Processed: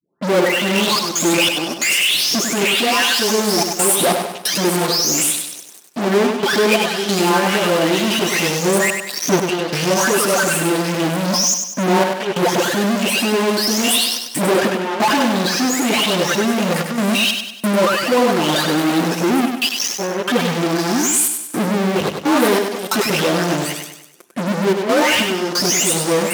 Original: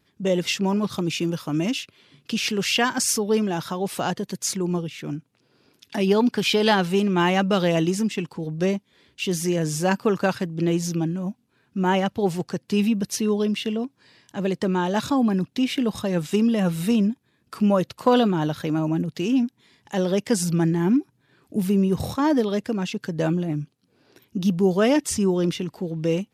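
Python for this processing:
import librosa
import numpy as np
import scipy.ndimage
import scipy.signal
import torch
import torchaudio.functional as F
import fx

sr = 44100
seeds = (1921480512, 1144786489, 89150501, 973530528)

p1 = fx.spec_delay(x, sr, highs='late', ms=792)
p2 = fx.step_gate(p1, sr, bpm=91, pattern='xxxxxx.xx..xxxxx', floor_db=-24.0, edge_ms=4.5)
p3 = fx.fuzz(p2, sr, gain_db=47.0, gate_db=-49.0)
p4 = p2 + (p3 * librosa.db_to_amplitude(-4.0))
p5 = fx.rider(p4, sr, range_db=4, speed_s=0.5)
p6 = scipy.signal.sosfilt(scipy.signal.butter(2, 280.0, 'highpass', fs=sr, output='sos'), p5)
p7 = p6 + fx.echo_feedback(p6, sr, ms=98, feedback_pct=45, wet_db=-6.0, dry=0)
y = p7 * librosa.db_to_amplitude(1.0)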